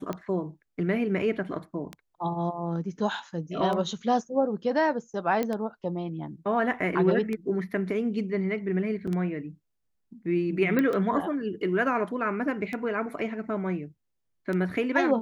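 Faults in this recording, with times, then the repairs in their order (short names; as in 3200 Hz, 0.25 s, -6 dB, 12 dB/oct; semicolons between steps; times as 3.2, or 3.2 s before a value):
tick 33 1/3 rpm -20 dBFS
5.43 pop -15 dBFS
9.07–9.08 gap 5.6 ms
10.79 pop -14 dBFS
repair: de-click; interpolate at 9.07, 5.6 ms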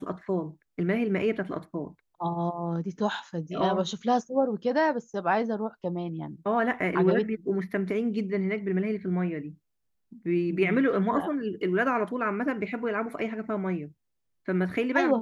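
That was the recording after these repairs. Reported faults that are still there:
10.79 pop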